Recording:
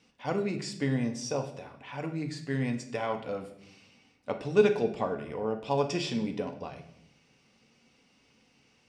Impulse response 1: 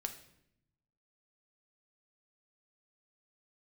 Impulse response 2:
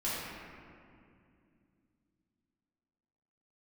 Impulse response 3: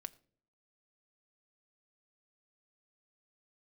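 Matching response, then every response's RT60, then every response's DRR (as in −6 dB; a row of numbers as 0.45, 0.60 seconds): 1; 0.75 s, 2.4 s, non-exponential decay; 5.0, −11.0, 12.0 decibels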